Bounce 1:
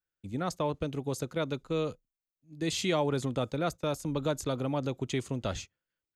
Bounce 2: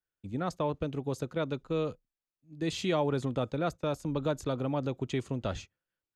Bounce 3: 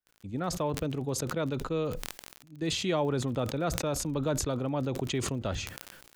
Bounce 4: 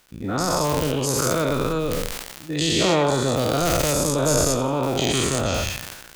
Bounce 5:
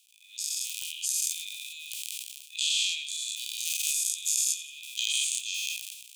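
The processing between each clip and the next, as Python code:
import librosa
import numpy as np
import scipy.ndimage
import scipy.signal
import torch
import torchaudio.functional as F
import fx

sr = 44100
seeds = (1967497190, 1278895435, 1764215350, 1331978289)

y1 = fx.high_shelf(x, sr, hz=5000.0, db=-11.0)
y1 = fx.notch(y1, sr, hz=2100.0, q=23.0)
y2 = fx.dmg_crackle(y1, sr, seeds[0], per_s=37.0, level_db=-43.0)
y2 = fx.sustainer(y2, sr, db_per_s=45.0)
y3 = fx.spec_dilate(y2, sr, span_ms=240)
y3 = 10.0 ** (-4.5 / 20.0) * (np.abs((y3 / 10.0 ** (-4.5 / 20.0) + 3.0) % 4.0 - 2.0) - 1.0)
y3 = fx.echo_feedback(y3, sr, ms=87, feedback_pct=43, wet_db=-15)
y3 = y3 * 10.0 ** (3.0 / 20.0)
y4 = scipy.signal.sosfilt(scipy.signal.cheby1(6, 6, 2400.0, 'highpass', fs=sr, output='sos'), y3)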